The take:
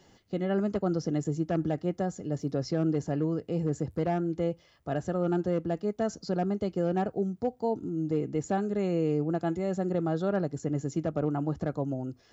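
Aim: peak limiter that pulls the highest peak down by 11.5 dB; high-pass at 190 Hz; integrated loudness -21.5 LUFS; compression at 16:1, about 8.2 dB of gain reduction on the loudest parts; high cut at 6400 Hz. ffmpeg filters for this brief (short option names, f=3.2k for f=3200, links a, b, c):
-af "highpass=190,lowpass=6.4k,acompressor=threshold=-32dB:ratio=16,volume=22.5dB,alimiter=limit=-12.5dB:level=0:latency=1"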